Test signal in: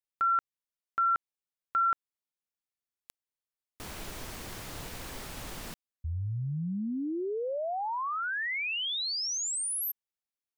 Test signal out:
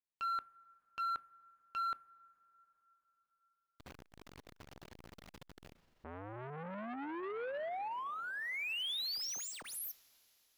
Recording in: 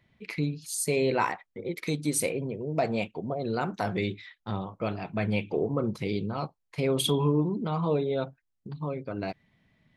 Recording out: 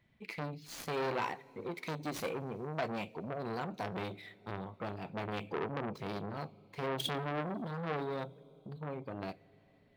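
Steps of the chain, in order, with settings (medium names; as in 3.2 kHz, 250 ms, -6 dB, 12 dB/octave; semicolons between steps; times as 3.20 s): median filter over 5 samples; dynamic bell 1.4 kHz, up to -5 dB, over -43 dBFS, Q 1.2; two-slope reverb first 0.29 s, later 4.4 s, from -18 dB, DRR 16.5 dB; transformer saturation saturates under 1.7 kHz; trim -4.5 dB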